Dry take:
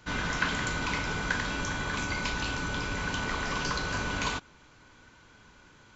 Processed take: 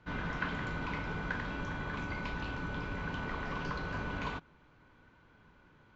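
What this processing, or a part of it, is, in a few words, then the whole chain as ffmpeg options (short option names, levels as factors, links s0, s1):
phone in a pocket: -af "lowpass=3500,equalizer=f=160:t=o:w=0.22:g=4,highshelf=f=2100:g=-8,volume=0.596"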